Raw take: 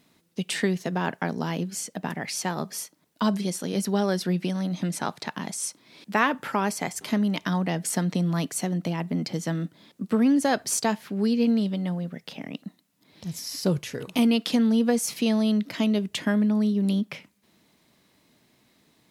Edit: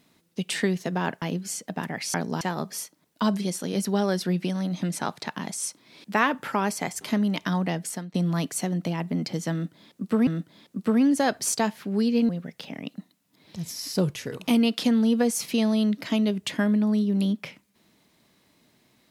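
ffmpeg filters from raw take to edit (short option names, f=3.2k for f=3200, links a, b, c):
-filter_complex "[0:a]asplit=7[a][b][c][d][e][f][g];[a]atrim=end=1.222[h];[b]atrim=start=1.488:end=2.412[i];[c]atrim=start=1.218:end=1.492[j];[d]atrim=start=2.408:end=8.14,asetpts=PTS-STARTPTS,afade=t=out:st=5.282:d=0.45:silence=0.0749894[k];[e]atrim=start=8.14:end=10.272,asetpts=PTS-STARTPTS,afade=t=in:d=0.004:c=hsin:silence=0.0749894[l];[f]atrim=start=9.518:end=11.542[m];[g]atrim=start=11.968[n];[h][i]acrossfade=d=0.004:c1=hsin:c2=hsin[o];[o][j]acrossfade=d=0.004:c1=hsin:c2=hsin[p];[k][l]concat=n=2:v=0:a=1[q];[p][q]acrossfade=d=0.004:c1=hsin:c2=hsin[r];[r][m]acrossfade=d=0.004:c1=hsin:c2=hsin[s];[s][n]acrossfade=d=0.004:c1=hsin:c2=hsin"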